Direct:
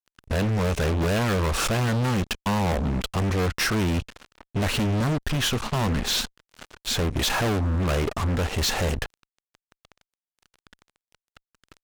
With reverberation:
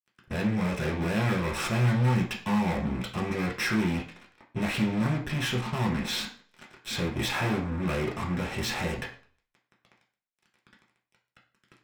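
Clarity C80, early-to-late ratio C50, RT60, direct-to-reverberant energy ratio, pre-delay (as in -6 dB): 13.5 dB, 9.0 dB, 0.45 s, -2.5 dB, 3 ms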